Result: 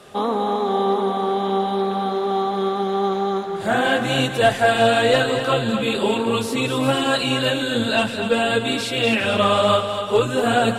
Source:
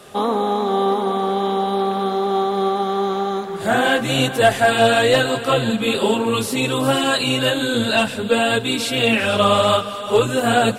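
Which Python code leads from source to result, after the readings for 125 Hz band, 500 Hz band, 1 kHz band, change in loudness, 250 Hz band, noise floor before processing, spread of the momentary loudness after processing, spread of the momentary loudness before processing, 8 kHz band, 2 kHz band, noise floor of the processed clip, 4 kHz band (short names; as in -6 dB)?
-1.5 dB, -1.5 dB, -1.5 dB, -1.5 dB, -1.5 dB, -29 dBFS, 5 LU, 5 LU, -5.0 dB, -2.0 dB, -27 dBFS, -2.0 dB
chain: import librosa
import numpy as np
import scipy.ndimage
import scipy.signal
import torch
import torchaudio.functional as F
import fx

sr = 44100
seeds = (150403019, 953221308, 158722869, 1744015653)

y = fx.high_shelf(x, sr, hz=10000.0, db=-9.5)
y = y + 10.0 ** (-8.5 / 20.0) * np.pad(y, (int(245 * sr / 1000.0), 0))[:len(y)]
y = y * librosa.db_to_amplitude(-2.0)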